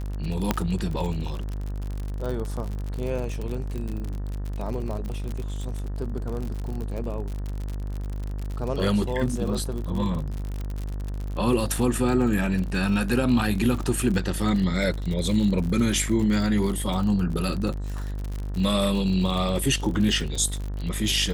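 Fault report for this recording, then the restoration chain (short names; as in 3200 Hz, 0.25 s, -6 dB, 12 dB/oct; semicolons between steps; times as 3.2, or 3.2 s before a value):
buzz 50 Hz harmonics 38 -30 dBFS
crackle 53/s -29 dBFS
0.51 pop -7 dBFS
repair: de-click; de-hum 50 Hz, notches 38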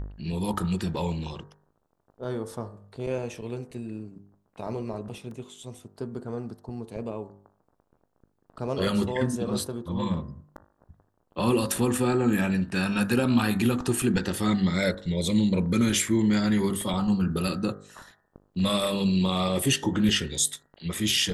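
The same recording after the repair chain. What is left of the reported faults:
0.51 pop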